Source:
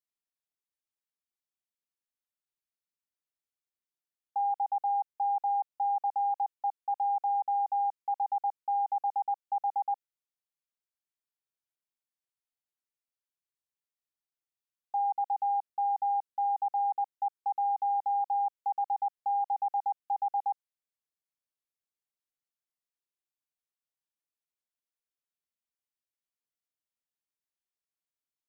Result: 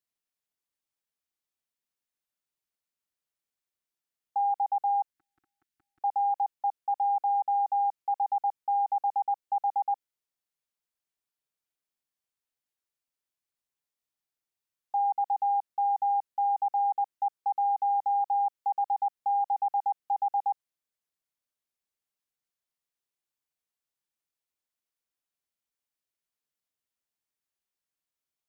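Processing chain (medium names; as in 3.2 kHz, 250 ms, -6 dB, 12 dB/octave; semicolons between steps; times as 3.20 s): 5.13–6.01 s: inverse Chebyshev band-stop 500–1000 Hz, stop band 40 dB; trim +2.5 dB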